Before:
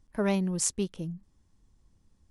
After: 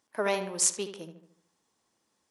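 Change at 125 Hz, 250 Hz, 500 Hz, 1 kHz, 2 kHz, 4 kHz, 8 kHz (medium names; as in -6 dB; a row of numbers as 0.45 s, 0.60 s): -13.0 dB, -11.0 dB, +1.0 dB, +4.5 dB, +4.5 dB, +4.0 dB, +4.0 dB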